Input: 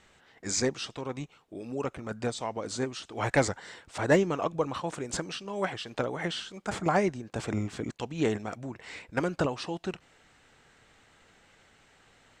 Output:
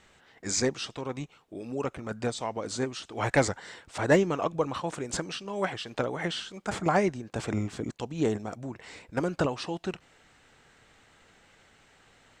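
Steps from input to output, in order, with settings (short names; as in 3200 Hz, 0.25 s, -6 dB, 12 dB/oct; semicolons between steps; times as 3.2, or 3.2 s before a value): 7.64–9.28 dynamic EQ 2200 Hz, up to -7 dB, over -49 dBFS, Q 0.8; gain +1 dB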